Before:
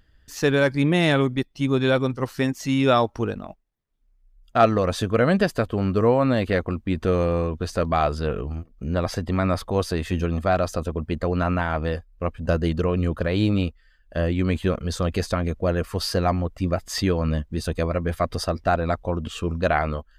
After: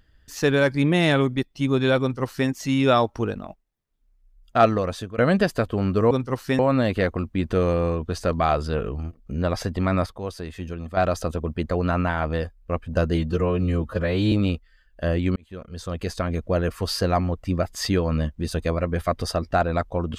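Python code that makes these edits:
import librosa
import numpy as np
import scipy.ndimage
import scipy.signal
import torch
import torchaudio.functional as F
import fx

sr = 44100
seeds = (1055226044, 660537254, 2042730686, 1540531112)

y = fx.edit(x, sr, fx.duplicate(start_s=2.01, length_s=0.48, to_s=6.11),
    fx.fade_out_to(start_s=4.65, length_s=0.53, floor_db=-15.5),
    fx.clip_gain(start_s=9.58, length_s=0.91, db=-8.5),
    fx.stretch_span(start_s=12.67, length_s=0.78, factor=1.5),
    fx.fade_in_span(start_s=14.49, length_s=1.11), tone=tone)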